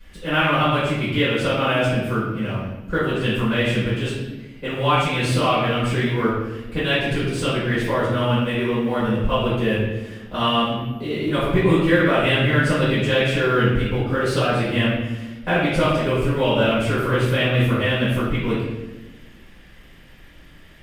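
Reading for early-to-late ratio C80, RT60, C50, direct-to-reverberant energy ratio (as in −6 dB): 2.5 dB, 1.1 s, −0.5 dB, −13.5 dB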